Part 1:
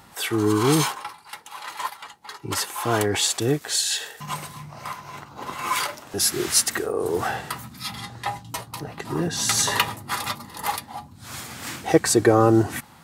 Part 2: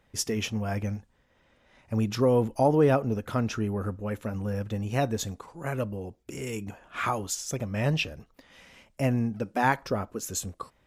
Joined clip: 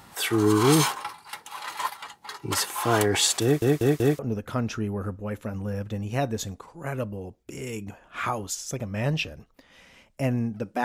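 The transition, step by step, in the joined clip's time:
part 1
3.43 s: stutter in place 0.19 s, 4 plays
4.19 s: go over to part 2 from 2.99 s

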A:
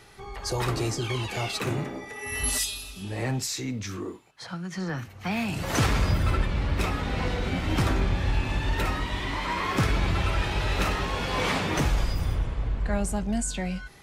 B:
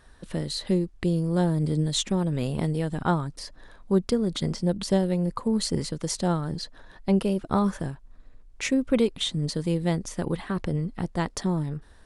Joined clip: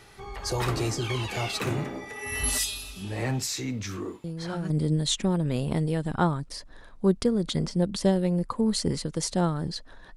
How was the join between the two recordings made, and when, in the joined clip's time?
A
4.24 s: add B from 1.11 s 0.46 s -9.5 dB
4.70 s: go over to B from 1.57 s

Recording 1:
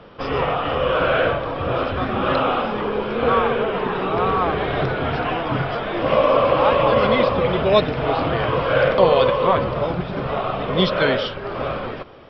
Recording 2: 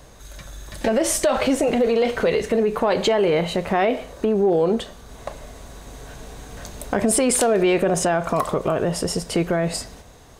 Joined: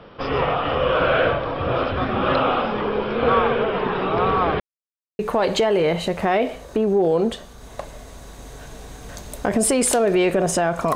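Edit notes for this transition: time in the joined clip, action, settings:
recording 1
4.60–5.19 s: mute
5.19 s: go over to recording 2 from 2.67 s

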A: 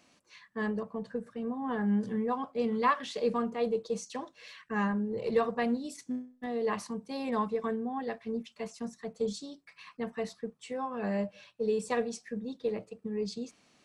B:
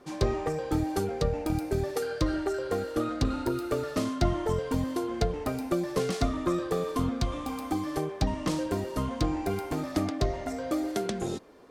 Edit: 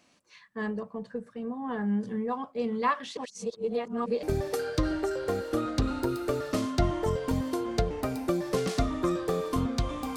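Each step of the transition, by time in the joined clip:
A
3.17–4.23 s: reverse
4.23 s: go over to B from 1.66 s

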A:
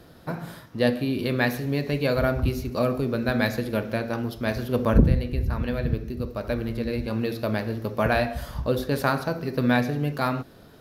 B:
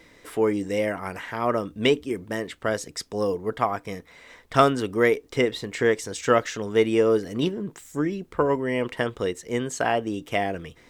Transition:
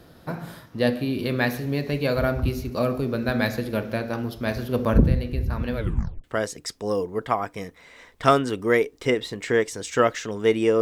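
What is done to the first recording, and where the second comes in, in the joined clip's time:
A
5.76 s: tape stop 0.48 s
6.24 s: go over to B from 2.55 s

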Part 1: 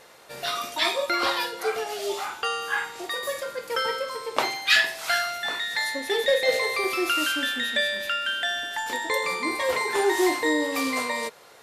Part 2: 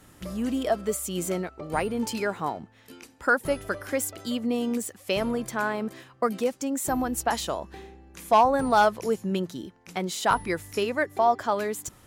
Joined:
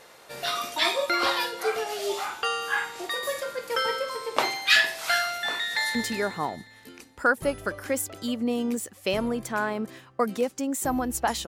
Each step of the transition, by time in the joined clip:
part 1
5.68–5.95 s: echo throw 180 ms, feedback 55%, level -6.5 dB
5.95 s: go over to part 2 from 1.98 s

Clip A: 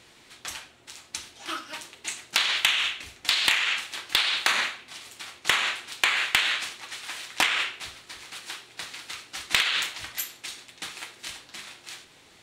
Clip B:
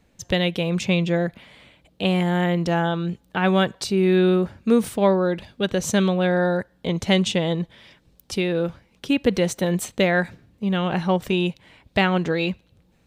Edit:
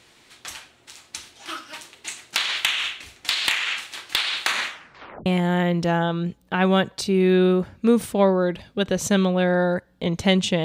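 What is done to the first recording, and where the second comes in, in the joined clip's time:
clip A
4.67 s: tape stop 0.59 s
5.26 s: go over to clip B from 2.09 s

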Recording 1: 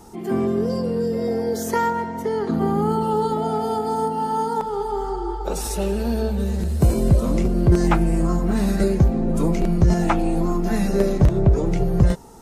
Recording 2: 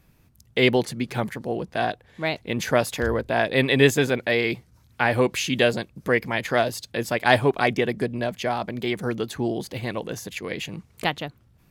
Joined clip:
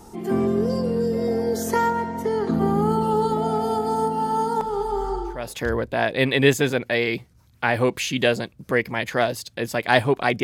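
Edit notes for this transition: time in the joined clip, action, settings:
recording 1
5.40 s: go over to recording 2 from 2.77 s, crossfade 0.44 s quadratic

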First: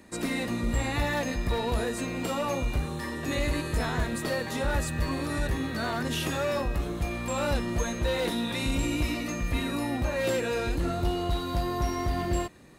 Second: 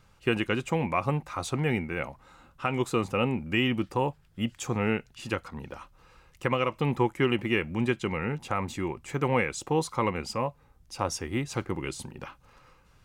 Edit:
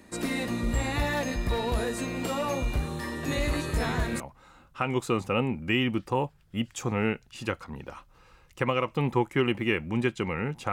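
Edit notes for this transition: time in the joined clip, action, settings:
first
3.28 s: add second from 1.12 s 0.92 s -10 dB
4.20 s: go over to second from 2.04 s

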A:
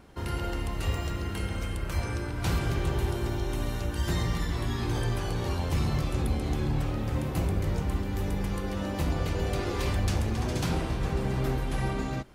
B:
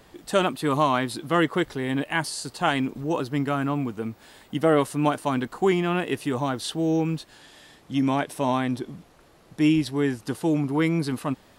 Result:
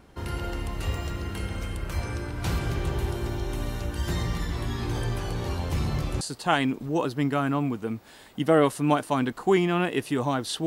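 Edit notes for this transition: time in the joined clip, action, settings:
A
6.21 s: go over to B from 2.36 s

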